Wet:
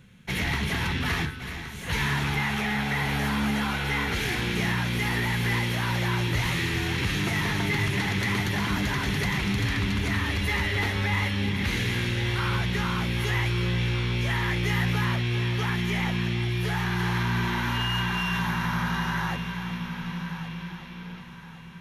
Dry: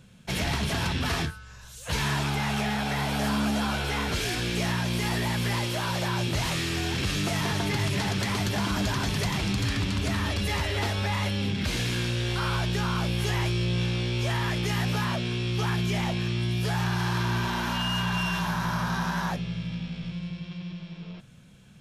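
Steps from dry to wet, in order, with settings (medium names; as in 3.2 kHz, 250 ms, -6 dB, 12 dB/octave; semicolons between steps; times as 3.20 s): graphic EQ with 31 bands 630 Hz -9 dB, 2 kHz +8 dB, 5 kHz -7 dB, 8 kHz -9 dB; on a send: multi-head delay 373 ms, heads first and third, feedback 53%, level -12 dB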